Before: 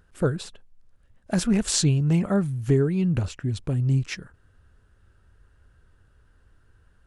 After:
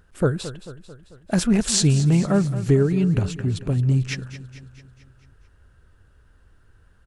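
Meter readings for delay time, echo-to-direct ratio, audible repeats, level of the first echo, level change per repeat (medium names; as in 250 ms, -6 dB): 221 ms, -12.5 dB, 5, -14.0 dB, -5.0 dB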